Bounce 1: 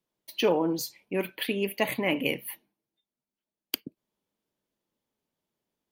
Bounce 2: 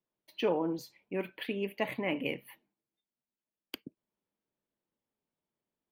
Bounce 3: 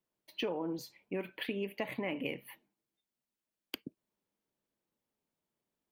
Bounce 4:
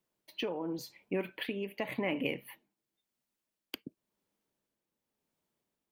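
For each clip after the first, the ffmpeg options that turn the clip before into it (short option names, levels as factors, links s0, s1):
-af "bass=f=250:g=0,treble=f=4000:g=-13,volume=0.531"
-af "acompressor=threshold=0.02:ratio=6,volume=1.19"
-af "tremolo=f=0.92:d=0.42,volume=1.58"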